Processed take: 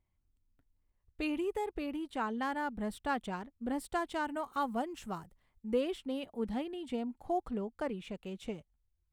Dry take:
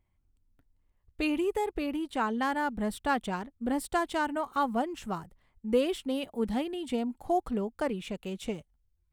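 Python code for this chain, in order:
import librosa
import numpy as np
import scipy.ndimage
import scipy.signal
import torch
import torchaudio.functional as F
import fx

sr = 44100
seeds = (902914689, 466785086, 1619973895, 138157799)

y = fx.high_shelf(x, sr, hz=5500.0, db=fx.steps((0.0, -3.5), (4.26, 3.0), (5.72, -7.5)))
y = F.gain(torch.from_numpy(y), -5.5).numpy()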